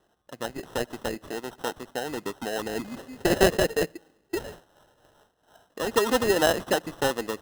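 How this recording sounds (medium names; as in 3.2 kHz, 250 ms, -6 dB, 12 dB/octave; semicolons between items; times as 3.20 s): aliases and images of a low sample rate 2.3 kHz, jitter 0%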